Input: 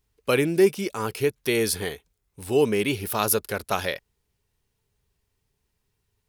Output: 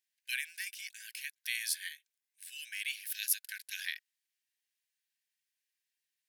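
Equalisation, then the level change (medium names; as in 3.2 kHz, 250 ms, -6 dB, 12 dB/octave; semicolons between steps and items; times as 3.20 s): brick-wall FIR high-pass 1.5 kHz; -7.0 dB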